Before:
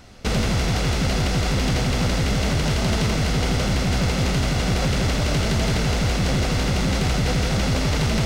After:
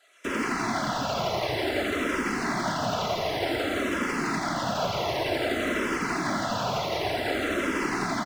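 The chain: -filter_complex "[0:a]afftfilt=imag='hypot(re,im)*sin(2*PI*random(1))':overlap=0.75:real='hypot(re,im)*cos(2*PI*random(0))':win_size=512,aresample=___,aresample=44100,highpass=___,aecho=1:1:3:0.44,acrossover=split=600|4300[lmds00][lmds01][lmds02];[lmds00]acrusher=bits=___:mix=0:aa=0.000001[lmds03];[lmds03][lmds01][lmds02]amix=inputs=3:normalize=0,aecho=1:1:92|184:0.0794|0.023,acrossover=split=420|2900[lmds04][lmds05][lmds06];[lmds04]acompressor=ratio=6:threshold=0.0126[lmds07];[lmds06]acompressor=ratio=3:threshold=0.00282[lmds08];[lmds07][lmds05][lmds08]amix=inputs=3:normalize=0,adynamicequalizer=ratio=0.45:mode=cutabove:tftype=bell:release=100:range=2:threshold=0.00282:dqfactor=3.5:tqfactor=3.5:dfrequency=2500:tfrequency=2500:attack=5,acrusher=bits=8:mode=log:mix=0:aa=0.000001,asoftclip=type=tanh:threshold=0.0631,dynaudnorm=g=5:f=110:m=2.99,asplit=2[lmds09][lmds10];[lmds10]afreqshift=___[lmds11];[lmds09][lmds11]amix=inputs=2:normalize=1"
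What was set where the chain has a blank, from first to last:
32000, 190, 5, -0.54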